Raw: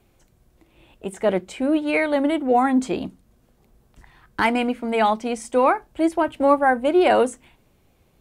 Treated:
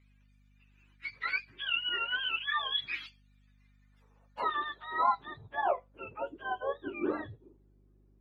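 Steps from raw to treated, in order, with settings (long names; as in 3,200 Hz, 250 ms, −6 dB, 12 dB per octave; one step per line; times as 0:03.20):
frequency axis turned over on the octave scale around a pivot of 930 Hz
band-pass filter sweep 2,300 Hz → 360 Hz, 0:03.53–0:06.66
mains hum 50 Hz, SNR 28 dB
level −2.5 dB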